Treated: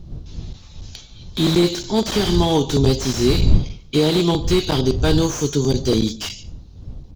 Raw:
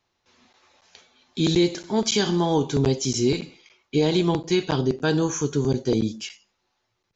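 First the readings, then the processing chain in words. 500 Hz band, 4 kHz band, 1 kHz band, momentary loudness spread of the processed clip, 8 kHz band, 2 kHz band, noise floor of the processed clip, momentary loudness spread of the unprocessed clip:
+3.5 dB, +6.0 dB, +3.5 dB, 19 LU, can't be measured, +2.0 dB, −42 dBFS, 8 LU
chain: wind on the microphone 88 Hz −28 dBFS
high shelf with overshoot 2,700 Hz +8.5 dB, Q 1.5
single-tap delay 145 ms −20.5 dB
slew-rate limiting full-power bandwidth 140 Hz
level +4 dB

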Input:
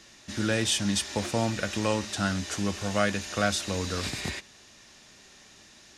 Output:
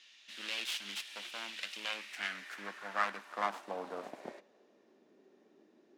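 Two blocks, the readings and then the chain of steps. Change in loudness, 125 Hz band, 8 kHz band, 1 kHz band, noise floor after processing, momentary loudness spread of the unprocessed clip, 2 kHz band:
−10.5 dB, below −30 dB, −18.5 dB, −5.5 dB, −67 dBFS, 7 LU, −7.0 dB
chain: phase distortion by the signal itself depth 0.6 ms
low shelf with overshoot 140 Hz −14 dB, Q 1.5
band-pass filter sweep 3,000 Hz → 380 Hz, 0:01.70–0:05.00

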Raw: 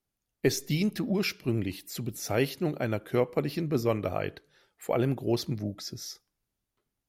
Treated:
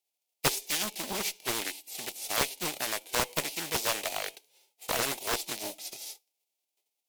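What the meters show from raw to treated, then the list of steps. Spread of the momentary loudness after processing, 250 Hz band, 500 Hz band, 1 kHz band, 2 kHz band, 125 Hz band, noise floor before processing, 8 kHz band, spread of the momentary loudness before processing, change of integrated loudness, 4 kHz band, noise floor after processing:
10 LU, −13.0 dB, −8.0 dB, +3.5 dB, +3.5 dB, −15.0 dB, −85 dBFS, +8.5 dB, 10 LU, −1.0 dB, +6.0 dB, −85 dBFS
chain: spectral envelope flattened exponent 0.3
high-pass filter 480 Hz 12 dB per octave
flat-topped bell 1,400 Hz −16 dB 1 octave
harmonic generator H 6 −26 dB, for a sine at −9 dBFS
highs frequency-modulated by the lows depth 0.98 ms

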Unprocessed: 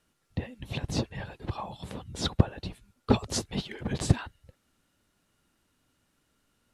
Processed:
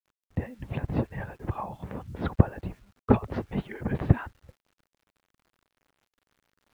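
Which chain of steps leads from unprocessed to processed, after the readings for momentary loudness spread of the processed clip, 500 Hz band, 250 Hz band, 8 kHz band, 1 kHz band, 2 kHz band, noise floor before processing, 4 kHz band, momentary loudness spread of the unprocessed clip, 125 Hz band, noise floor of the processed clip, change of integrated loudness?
14 LU, +2.5 dB, +2.5 dB, below −25 dB, +2.5 dB, +0.5 dB, −74 dBFS, below −15 dB, 14 LU, +2.5 dB, below −85 dBFS, +2.0 dB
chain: low-pass filter 2,100 Hz 24 dB per octave
bit reduction 11 bits
level +2.5 dB

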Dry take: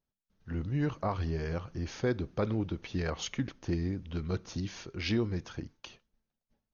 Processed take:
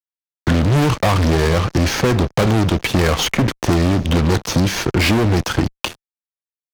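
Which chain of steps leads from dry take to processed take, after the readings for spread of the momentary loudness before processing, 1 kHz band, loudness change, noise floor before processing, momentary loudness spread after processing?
8 LU, +20.0 dB, +17.5 dB, below −85 dBFS, 5 LU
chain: fuzz pedal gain 41 dB, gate −50 dBFS
multiband upward and downward compressor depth 70%

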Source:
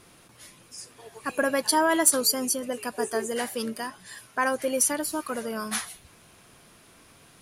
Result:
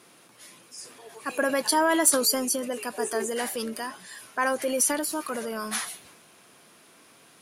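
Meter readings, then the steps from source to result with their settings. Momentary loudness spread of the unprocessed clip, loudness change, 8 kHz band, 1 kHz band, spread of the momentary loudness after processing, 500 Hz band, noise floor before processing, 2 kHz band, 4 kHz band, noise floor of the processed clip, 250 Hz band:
21 LU, 0.0 dB, 0.0 dB, 0.0 dB, 22 LU, 0.0 dB, −55 dBFS, 0.0 dB, 0.0 dB, −56 dBFS, 0.0 dB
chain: high-pass filter 210 Hz 12 dB per octave
transient designer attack −1 dB, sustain +5 dB

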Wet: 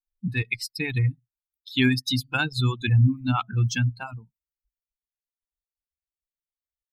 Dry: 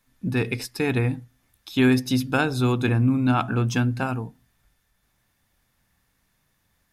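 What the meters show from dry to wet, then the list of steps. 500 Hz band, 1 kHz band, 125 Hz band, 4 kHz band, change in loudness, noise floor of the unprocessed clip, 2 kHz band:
−11.0 dB, −4.5 dB, +1.0 dB, +4.0 dB, −1.5 dB, −70 dBFS, 0.0 dB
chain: spectral dynamics exaggerated over time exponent 2
reverb reduction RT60 0.85 s
octave-band graphic EQ 125/500/2,000/4,000 Hz +7/−10/+4/+10 dB

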